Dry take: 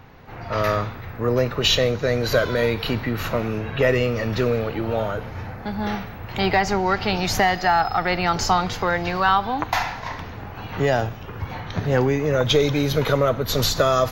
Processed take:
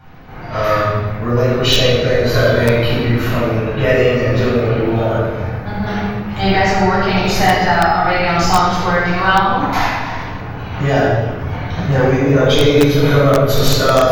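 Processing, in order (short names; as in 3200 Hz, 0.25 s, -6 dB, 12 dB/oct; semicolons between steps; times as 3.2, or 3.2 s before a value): shoebox room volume 1000 m³, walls mixed, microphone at 7.8 m; in parallel at -4 dB: wrapped overs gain -5.5 dB; on the sum: gain -11 dB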